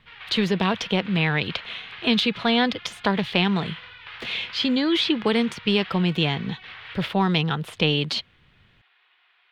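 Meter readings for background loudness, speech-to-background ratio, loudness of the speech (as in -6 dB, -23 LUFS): -40.5 LUFS, 17.0 dB, -23.5 LUFS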